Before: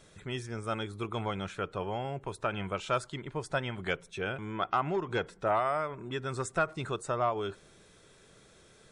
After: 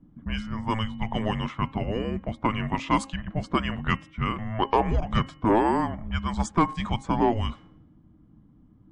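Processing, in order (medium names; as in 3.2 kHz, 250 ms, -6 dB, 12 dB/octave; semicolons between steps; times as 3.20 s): level-controlled noise filter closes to 390 Hz, open at -28 dBFS; frequency shift -330 Hz; de-hum 269.8 Hz, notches 11; trim +7.5 dB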